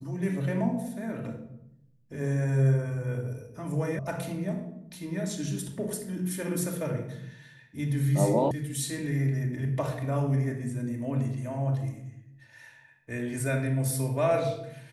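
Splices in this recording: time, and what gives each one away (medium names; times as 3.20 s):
3.99 s: sound stops dead
8.51 s: sound stops dead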